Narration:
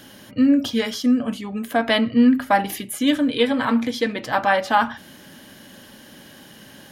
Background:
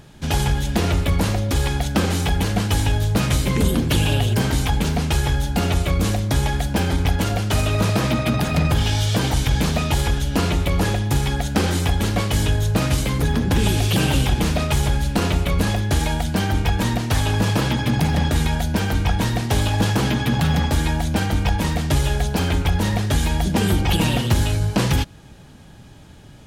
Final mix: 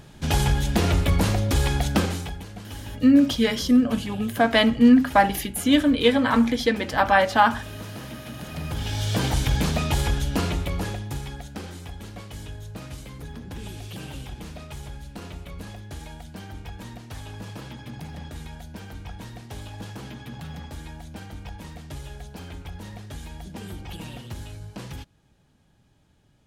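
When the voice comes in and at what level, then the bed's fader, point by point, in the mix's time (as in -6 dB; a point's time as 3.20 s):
2.65 s, +0.5 dB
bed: 1.96 s -1.5 dB
2.45 s -18.5 dB
8.35 s -18.5 dB
9.20 s -3.5 dB
10.28 s -3.5 dB
11.77 s -18.5 dB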